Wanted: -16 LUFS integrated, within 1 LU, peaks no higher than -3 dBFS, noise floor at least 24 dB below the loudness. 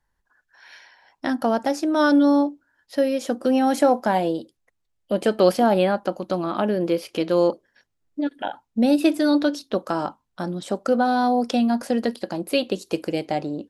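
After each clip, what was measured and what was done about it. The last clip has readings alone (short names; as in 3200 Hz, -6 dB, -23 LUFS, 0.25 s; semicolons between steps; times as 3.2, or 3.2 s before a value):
loudness -22.0 LUFS; peak -5.5 dBFS; loudness target -16.0 LUFS
-> gain +6 dB; limiter -3 dBFS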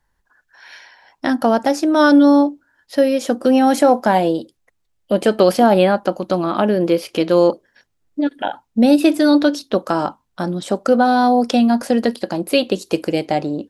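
loudness -16.5 LUFS; peak -3.0 dBFS; noise floor -68 dBFS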